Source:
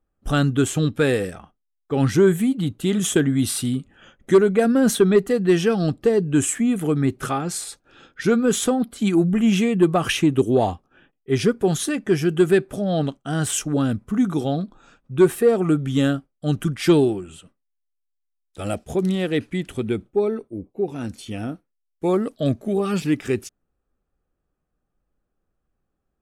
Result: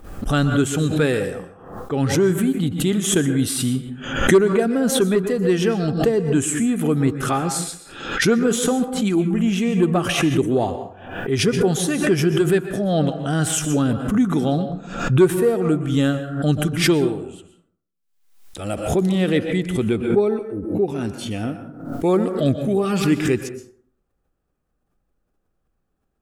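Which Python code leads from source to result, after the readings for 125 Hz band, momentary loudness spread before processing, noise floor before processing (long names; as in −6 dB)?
+2.5 dB, 11 LU, −76 dBFS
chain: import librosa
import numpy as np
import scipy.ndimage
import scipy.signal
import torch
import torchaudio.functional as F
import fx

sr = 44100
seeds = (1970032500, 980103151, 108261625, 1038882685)

y = fx.rider(x, sr, range_db=3, speed_s=0.5)
y = fx.rev_plate(y, sr, seeds[0], rt60_s=0.57, hf_ratio=0.5, predelay_ms=110, drr_db=9.0)
y = fx.pre_swell(y, sr, db_per_s=73.0)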